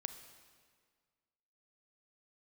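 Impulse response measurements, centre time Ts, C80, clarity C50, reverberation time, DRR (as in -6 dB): 18 ms, 11.0 dB, 9.5 dB, 1.8 s, 9.0 dB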